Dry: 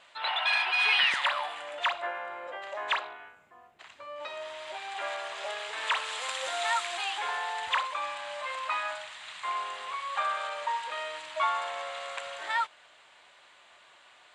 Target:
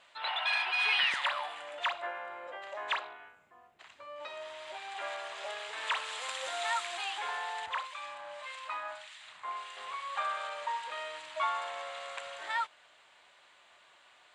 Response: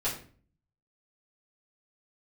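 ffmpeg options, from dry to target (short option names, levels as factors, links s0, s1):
-filter_complex "[0:a]asettb=1/sr,asplit=3[s0][s1][s2];[s0]atrim=end=7.664[s3];[s1]atrim=start=7.66:end=9.77,asetpts=PTS-STARTPTS,afade=t=in:d=0.004:c=qsin,afade=t=out:st=2.106:d=0.004:c=qsin,acrossover=split=1600[s4][s5];[s4]aeval=exprs='val(0)*(1-0.7/2+0.7/2*cos(2*PI*1.7*n/s))':c=same[s6];[s5]aeval=exprs='val(0)*(1-0.7/2-0.7/2*cos(2*PI*1.7*n/s))':c=same[s7];[s6][s7]amix=inputs=2:normalize=0[s8];[s2]atrim=start=9.766[s9];[s3][s8]acrossfade=d=0.004:c1=hsin:c2=qsin[s10];[s10][s9]acrossfade=d=0.004:c1=qsin:c2=hsin,volume=0.631"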